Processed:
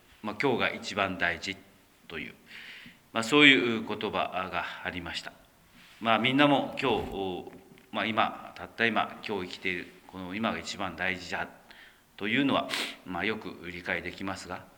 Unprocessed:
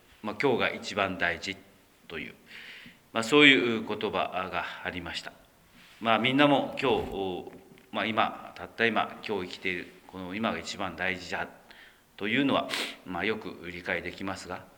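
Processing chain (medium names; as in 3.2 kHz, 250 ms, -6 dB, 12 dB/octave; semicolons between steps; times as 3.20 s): peaking EQ 480 Hz -4.5 dB 0.39 oct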